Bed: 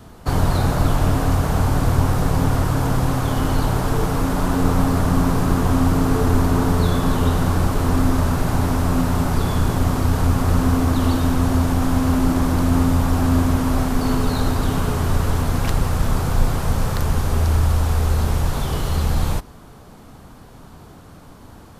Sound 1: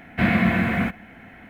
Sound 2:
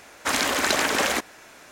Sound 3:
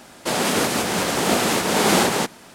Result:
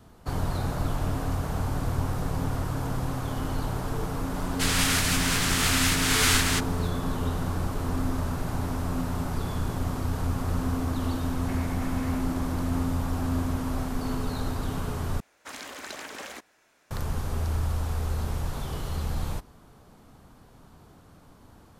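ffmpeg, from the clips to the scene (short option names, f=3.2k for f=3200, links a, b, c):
-filter_complex "[0:a]volume=-10.5dB[a];[3:a]highpass=f=1.3k:w=0.5412,highpass=f=1.3k:w=1.3066[b];[1:a]acompressor=threshold=-29dB:ratio=6:attack=3.2:release=140:knee=1:detection=peak[c];[a]asplit=2[d][e];[d]atrim=end=15.204[f];[2:a]atrim=end=1.71,asetpts=PTS-STARTPTS,volume=-17dB[g];[e]atrim=start=16.906[h];[b]atrim=end=2.54,asetpts=PTS-STARTPTS,volume=-1dB,afade=t=in:d=0.004:c=hsin,afade=t=out:st=2.536:d=0.004:c=hsin,adelay=4340[i];[c]atrim=end=1.49,asetpts=PTS-STARTPTS,volume=-9.5dB,afade=t=in:d=0.004:c=hsin,afade=t=out:st=1.486:d=0.004:c=hsin,adelay=11310[j];[f][g]acrossfade=d=0.004:c1=hsin:c2=hsin[k];[k][h]acrossfade=d=0.004:c1=hsin:c2=hsin[l];[l][i][j]amix=inputs=3:normalize=0"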